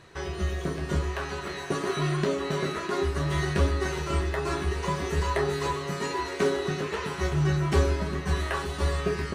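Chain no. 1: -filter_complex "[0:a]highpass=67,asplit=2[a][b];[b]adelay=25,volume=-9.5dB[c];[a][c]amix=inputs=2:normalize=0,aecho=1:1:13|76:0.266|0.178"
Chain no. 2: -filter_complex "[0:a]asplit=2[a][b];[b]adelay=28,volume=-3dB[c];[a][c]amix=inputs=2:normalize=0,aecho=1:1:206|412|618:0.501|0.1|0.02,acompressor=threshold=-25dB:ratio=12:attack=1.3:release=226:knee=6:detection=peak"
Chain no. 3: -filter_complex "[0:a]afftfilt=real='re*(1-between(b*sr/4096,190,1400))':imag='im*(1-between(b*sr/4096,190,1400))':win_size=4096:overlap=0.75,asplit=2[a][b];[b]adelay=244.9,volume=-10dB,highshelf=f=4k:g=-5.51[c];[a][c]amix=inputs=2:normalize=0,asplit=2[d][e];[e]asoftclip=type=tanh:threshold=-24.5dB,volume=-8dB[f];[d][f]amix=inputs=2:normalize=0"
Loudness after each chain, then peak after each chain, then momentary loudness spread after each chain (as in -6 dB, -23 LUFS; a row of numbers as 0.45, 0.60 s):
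-27.5, -32.0, -28.5 LUFS; -9.0, -19.5, -12.0 dBFS; 6, 1, 7 LU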